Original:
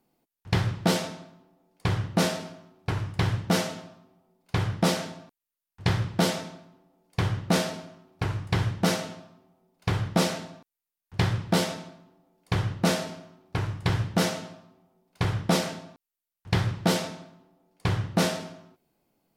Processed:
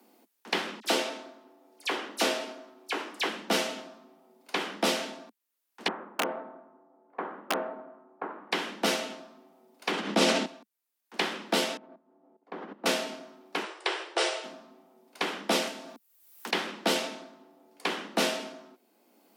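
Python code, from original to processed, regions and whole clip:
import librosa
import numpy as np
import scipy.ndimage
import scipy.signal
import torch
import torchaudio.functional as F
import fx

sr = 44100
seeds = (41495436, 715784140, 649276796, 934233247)

y = fx.chain(x, sr, fx.highpass(hz=250.0, slope=24),
    fx.dispersion(late='lows', ms=43.0, hz=2900.0), at=(0.8, 3.29))
y = fx.chain(y, sr, fx.lowpass(hz=1300.0, slope=24),
    fx.low_shelf(hz=390.0, db=-10.0),
    fx.overflow_wrap(gain_db=19.0), at=(5.88, 8.52))
y = fx.chain(y, sr, fx.lowpass(hz=9600.0, slope=12),
    fx.low_shelf(hz=250.0, db=10.0),
    fx.sustainer(db_per_s=44.0), at=(9.91, 10.46))
y = fx.chain(y, sr, fx.lowpass(hz=1100.0, slope=12),
    fx.level_steps(step_db=17), at=(11.77, 12.86))
y = fx.chain(y, sr, fx.brickwall_bandpass(low_hz=320.0, high_hz=9900.0),
    fx.notch(hz=6500.0, q=13.0), at=(13.63, 14.44))
y = fx.chain(y, sr, fx.high_shelf(hz=9300.0, db=10.5),
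    fx.band_squash(depth_pct=100), at=(15.67, 16.51))
y = scipy.signal.sosfilt(scipy.signal.butter(12, 210.0, 'highpass', fs=sr, output='sos'), y)
y = fx.dynamic_eq(y, sr, hz=2800.0, q=2.0, threshold_db=-49.0, ratio=4.0, max_db=6)
y = fx.band_squash(y, sr, depth_pct=40)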